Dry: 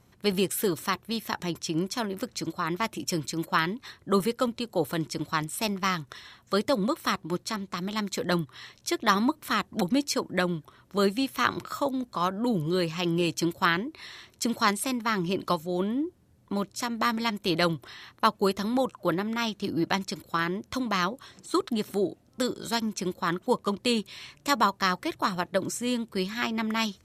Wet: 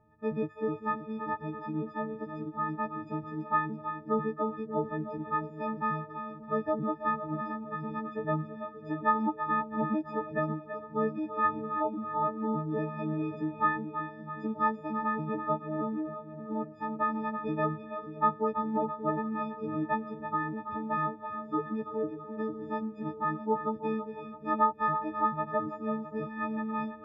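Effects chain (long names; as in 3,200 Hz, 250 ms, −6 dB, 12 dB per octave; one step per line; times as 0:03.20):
every partial snapped to a pitch grid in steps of 6 semitones
low-pass filter 1,400 Hz 24 dB per octave
on a send: echo with a time of its own for lows and highs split 450 Hz, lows 580 ms, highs 331 ms, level −9 dB
on the sum: tempo change 1×
level −5.5 dB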